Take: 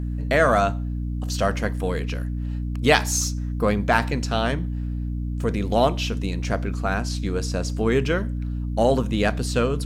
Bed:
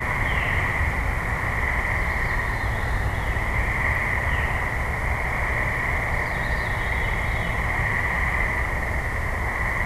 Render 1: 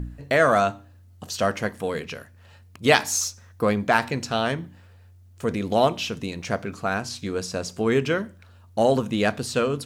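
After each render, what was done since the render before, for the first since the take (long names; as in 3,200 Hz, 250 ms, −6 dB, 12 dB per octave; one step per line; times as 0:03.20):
hum removal 60 Hz, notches 5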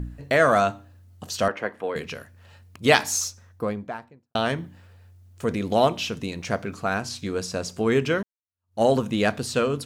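0:01.48–0:01.96: three-way crossover with the lows and the highs turned down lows −15 dB, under 280 Hz, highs −19 dB, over 3,000 Hz
0:03.06–0:04.35: fade out and dull
0:08.23–0:08.82: fade in exponential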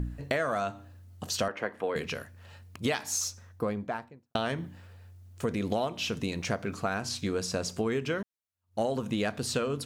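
downward compressor 10 to 1, threshold −26 dBFS, peak gain reduction 15 dB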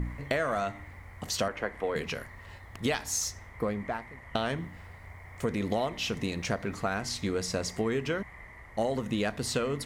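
mix in bed −25 dB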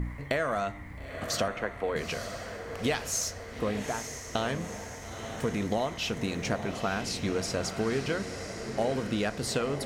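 feedback delay with all-pass diffusion 904 ms, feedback 54%, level −8 dB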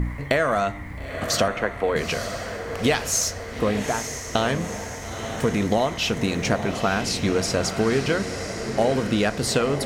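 level +8 dB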